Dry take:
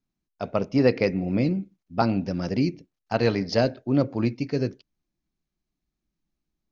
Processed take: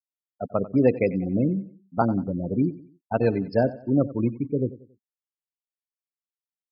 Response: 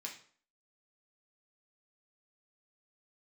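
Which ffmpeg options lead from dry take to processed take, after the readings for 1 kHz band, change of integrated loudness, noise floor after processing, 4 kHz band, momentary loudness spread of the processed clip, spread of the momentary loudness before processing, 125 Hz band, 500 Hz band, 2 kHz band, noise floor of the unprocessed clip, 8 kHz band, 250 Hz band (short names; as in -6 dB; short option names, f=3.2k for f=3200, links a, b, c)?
0.0 dB, 0.0 dB, under -85 dBFS, under -15 dB, 9 LU, 9 LU, 0.0 dB, +0.5 dB, -5.0 dB, -84 dBFS, n/a, +0.5 dB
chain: -filter_complex "[0:a]bandreject=f=1.9k:w=22,asplit=2[a][b];[1:a]atrim=start_sample=2205[c];[b][c]afir=irnorm=-1:irlink=0,volume=-17.5dB[d];[a][d]amix=inputs=2:normalize=0,afftfilt=real='re*gte(hypot(re,im),0.0794)':imag='im*gte(hypot(re,im),0.0794)':win_size=1024:overlap=0.75,lowpass=2.4k,aecho=1:1:92|184|276:0.141|0.0537|0.0204"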